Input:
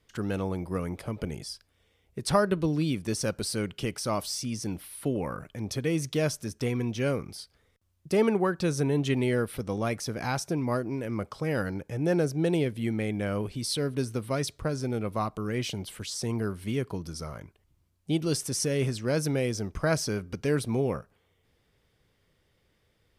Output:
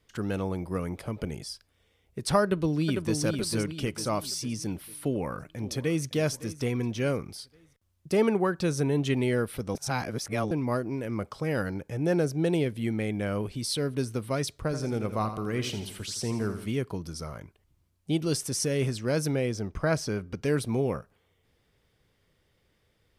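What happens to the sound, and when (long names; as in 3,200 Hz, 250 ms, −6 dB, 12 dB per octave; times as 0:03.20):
0:02.43–0:03.18: delay throw 450 ms, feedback 45%, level −5 dB
0:05.03–0:06.05: delay throw 560 ms, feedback 40%, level −17 dB
0:09.75–0:10.51: reverse
0:14.62–0:16.66: repeating echo 83 ms, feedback 50%, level −10 dB
0:19.35–0:20.43: high-shelf EQ 4,900 Hz −7.5 dB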